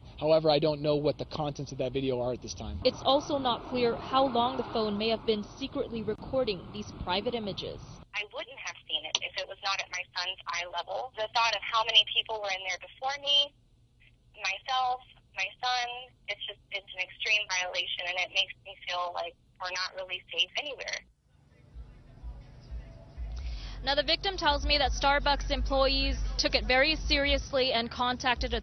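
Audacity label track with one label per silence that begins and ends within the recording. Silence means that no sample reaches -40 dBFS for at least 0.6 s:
13.470000	14.390000	silence
20.990000	21.760000	silence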